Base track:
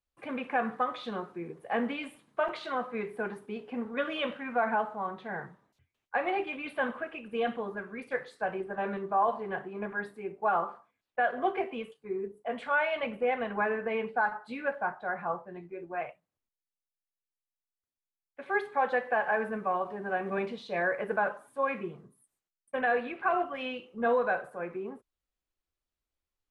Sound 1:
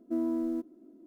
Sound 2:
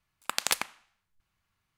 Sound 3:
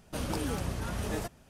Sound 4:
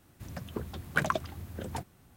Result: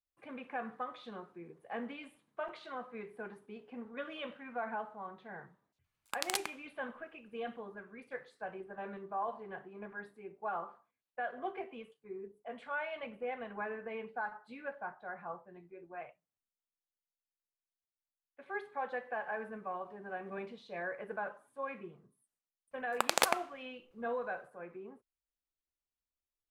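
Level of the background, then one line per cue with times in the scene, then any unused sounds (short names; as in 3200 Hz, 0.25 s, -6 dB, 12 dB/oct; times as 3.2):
base track -10.5 dB
5.84 add 2 -8 dB + record warp 78 rpm, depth 250 cents
22.71 add 2 -4.5 dB + bell 530 Hz +13 dB 2.3 oct
not used: 1, 3, 4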